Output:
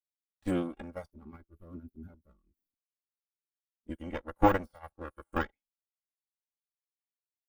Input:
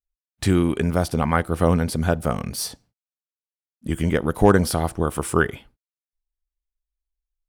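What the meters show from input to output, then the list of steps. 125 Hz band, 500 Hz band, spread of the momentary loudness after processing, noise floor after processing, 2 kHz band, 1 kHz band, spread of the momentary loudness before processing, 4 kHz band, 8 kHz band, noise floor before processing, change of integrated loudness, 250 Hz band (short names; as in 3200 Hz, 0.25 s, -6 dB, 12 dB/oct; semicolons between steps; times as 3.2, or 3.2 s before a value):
-20.0 dB, -14.0 dB, 23 LU, under -85 dBFS, -14.0 dB, -9.0 dB, 10 LU, -19.5 dB, under -30 dB, under -85 dBFS, -11.0 dB, -13.5 dB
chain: minimum comb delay 3.6 ms; spectral gain 1.11–3.4, 440–11000 Hz -13 dB; spectral noise reduction 11 dB; de-esser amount 80%; upward expander 2.5:1, over -42 dBFS; gain -2 dB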